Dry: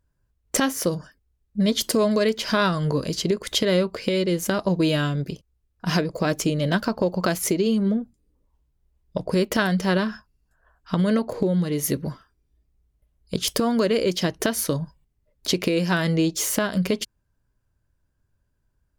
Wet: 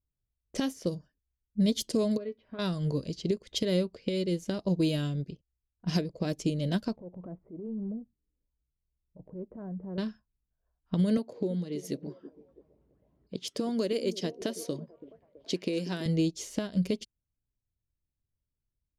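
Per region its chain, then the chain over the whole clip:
2.17–2.59 s: low-pass 1.8 kHz + feedback comb 85 Hz, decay 0.16 s, harmonics odd, mix 80%
6.96–9.98 s: low-pass 1.1 kHz 24 dB/octave + compression 2.5:1, threshold -26 dBFS + transient shaper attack -9 dB, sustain -1 dB
11.17–16.06 s: high-pass 200 Hz + upward compressor, threshold -27 dBFS + repeats whose band climbs or falls 329 ms, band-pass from 310 Hz, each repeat 0.7 oct, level -8 dB
whole clip: level-controlled noise filter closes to 1.1 kHz, open at -17.5 dBFS; peaking EQ 1.3 kHz -13 dB 1.8 oct; upward expansion 1.5:1, over -43 dBFS; trim -3 dB

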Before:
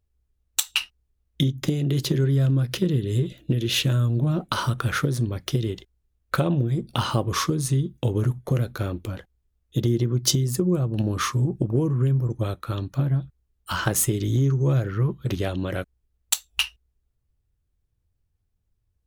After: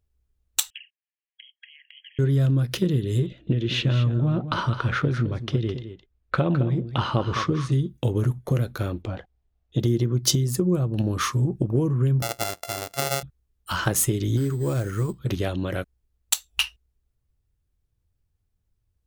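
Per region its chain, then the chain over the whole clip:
0.70–2.19 s: touch-sensitive flanger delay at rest 7.4 ms, full sweep at -19 dBFS + brick-wall FIR band-pass 1.6–3.3 kHz + compression 2:1, threshold -45 dBFS
3.26–7.72 s: low-pass 3.3 kHz + delay 211 ms -11 dB
9.02–9.80 s: low-pass 4.4 kHz + peaking EQ 720 Hz +10 dB 0.48 oct
12.22–13.23 s: sorted samples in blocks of 64 samples + tone controls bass -13 dB, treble +7 dB + tape noise reduction on one side only encoder only
14.37–15.19 s: peaking EQ 140 Hz -7 dB 0.26 oct + sample-rate reducer 8.1 kHz
whole clip: none

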